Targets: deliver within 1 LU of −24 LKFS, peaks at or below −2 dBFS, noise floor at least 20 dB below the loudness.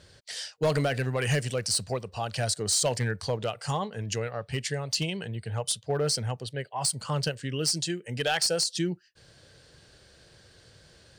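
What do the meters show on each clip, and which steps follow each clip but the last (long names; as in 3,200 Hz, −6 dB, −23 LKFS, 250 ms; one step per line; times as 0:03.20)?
share of clipped samples 0.3%; peaks flattened at −19.0 dBFS; integrated loudness −29.0 LKFS; sample peak −19.0 dBFS; target loudness −24.0 LKFS
→ clipped peaks rebuilt −19 dBFS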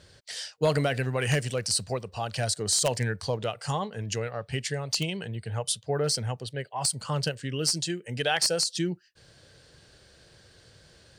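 share of clipped samples 0.0%; integrated loudness −28.5 LKFS; sample peak −10.0 dBFS; target loudness −24.0 LKFS
→ level +4.5 dB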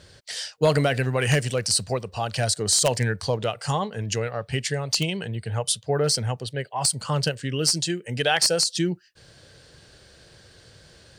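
integrated loudness −24.0 LKFS; sample peak −5.5 dBFS; background noise floor −53 dBFS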